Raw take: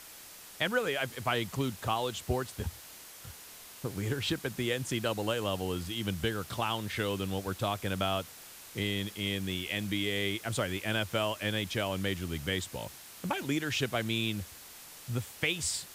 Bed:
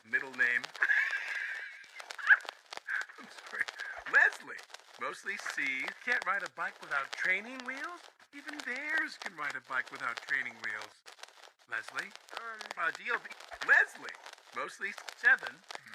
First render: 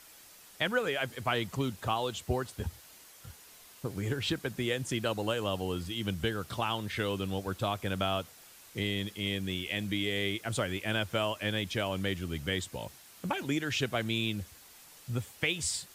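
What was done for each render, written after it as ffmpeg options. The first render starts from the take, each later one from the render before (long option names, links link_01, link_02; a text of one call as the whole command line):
ffmpeg -i in.wav -af "afftdn=noise_reduction=6:noise_floor=-50" out.wav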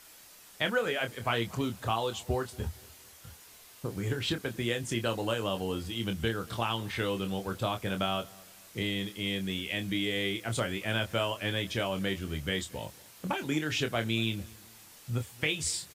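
ffmpeg -i in.wav -filter_complex "[0:a]asplit=2[link_01][link_02];[link_02]adelay=26,volume=-7.5dB[link_03];[link_01][link_03]amix=inputs=2:normalize=0,asplit=2[link_04][link_05];[link_05]adelay=231,lowpass=frequency=2000:poles=1,volume=-23dB,asplit=2[link_06][link_07];[link_07]adelay=231,lowpass=frequency=2000:poles=1,volume=0.38,asplit=2[link_08][link_09];[link_09]adelay=231,lowpass=frequency=2000:poles=1,volume=0.38[link_10];[link_04][link_06][link_08][link_10]amix=inputs=4:normalize=0" out.wav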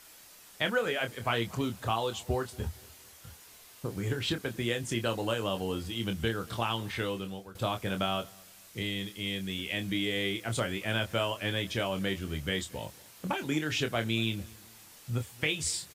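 ffmpeg -i in.wav -filter_complex "[0:a]asettb=1/sr,asplit=3[link_01][link_02][link_03];[link_01]atrim=end=8.304[link_04];[link_02]atrim=start=8.3:end=9.59,asetpts=PTS-STARTPTS,afade=type=in:duration=0.004:curve=qsin,afade=type=out:start_time=1.286:duration=0.004:curve=qsin,equalizer=frequency=510:width=0.3:gain=-3.5[link_05];[link_03]atrim=start=9.586[link_06];[link_04][link_05]acrossfade=duration=0.004:curve1=hsin:curve2=qsin[link_07];[link_07][link_06]acrossfade=duration=0.004:curve1=qsin:curve2=hsin,asplit=2[link_08][link_09];[link_08]atrim=end=7.55,asetpts=PTS-STARTPTS,afade=type=out:start_time=6.72:duration=0.83:curve=qsin:silence=0.133352[link_10];[link_09]atrim=start=7.55,asetpts=PTS-STARTPTS,afade=type=in:duration=0.004:curve=hsin:silence=0.133352[link_11];[link_10][link_11]concat=n=2:v=0:a=1" out.wav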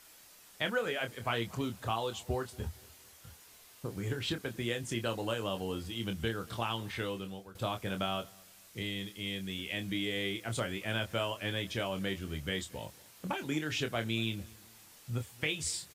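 ffmpeg -i in.wav -af "volume=-3.5dB" out.wav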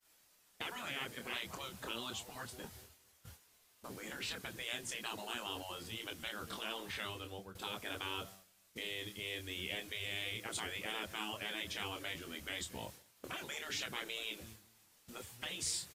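ffmpeg -i in.wav -af "agate=range=-33dB:threshold=-48dB:ratio=3:detection=peak,afftfilt=real='re*lt(hypot(re,im),0.0447)':imag='im*lt(hypot(re,im),0.0447)':win_size=1024:overlap=0.75" out.wav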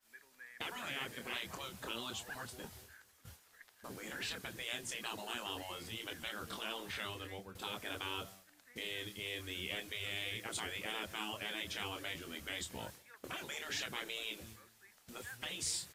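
ffmpeg -i in.wav -i bed.wav -filter_complex "[1:a]volume=-25.5dB[link_01];[0:a][link_01]amix=inputs=2:normalize=0" out.wav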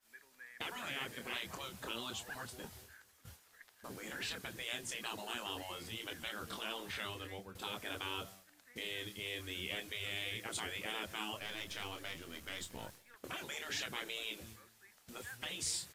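ffmpeg -i in.wav -filter_complex "[0:a]asettb=1/sr,asplit=3[link_01][link_02][link_03];[link_01]atrim=end=11.394[link_04];[link_02]atrim=start=11.39:end=13.16,asetpts=PTS-STARTPTS,afade=type=in:duration=0.004:curve=qsin,afade=type=out:start_time=1.766:duration=0.004:curve=qsin,aeval=exprs='if(lt(val(0),0),0.447*val(0),val(0))':channel_layout=same[link_05];[link_03]atrim=start=13.156[link_06];[link_04][link_05]acrossfade=duration=0.004:curve1=hsin:curve2=qsin[link_07];[link_07][link_06]acrossfade=duration=0.004:curve1=qsin:curve2=hsin" out.wav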